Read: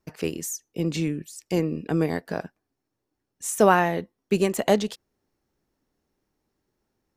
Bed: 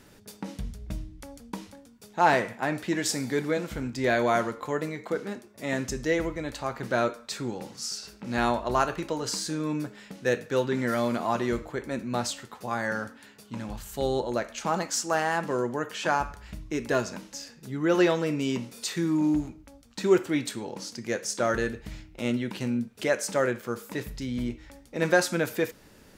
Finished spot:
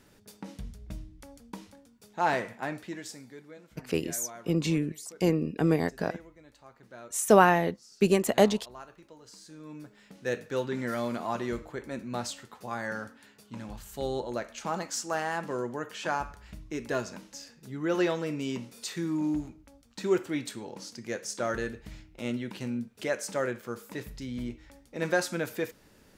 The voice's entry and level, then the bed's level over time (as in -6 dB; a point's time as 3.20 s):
3.70 s, -1.0 dB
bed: 2.66 s -5.5 dB
3.43 s -21.5 dB
9.26 s -21.5 dB
10.34 s -5 dB